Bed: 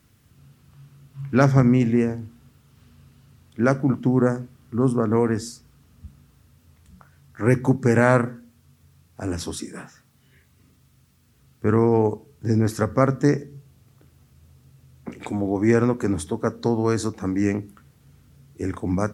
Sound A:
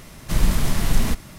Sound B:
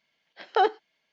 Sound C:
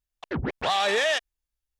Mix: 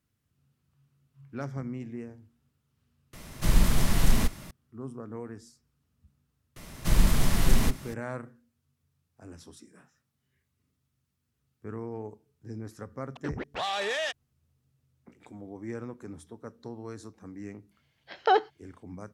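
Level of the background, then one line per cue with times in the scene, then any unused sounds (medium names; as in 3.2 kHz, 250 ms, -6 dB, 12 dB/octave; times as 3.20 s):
bed -19.5 dB
3.13 s: replace with A -3 dB
6.56 s: add A -3 dB
12.93 s: add C -7 dB
17.71 s: add B -0.5 dB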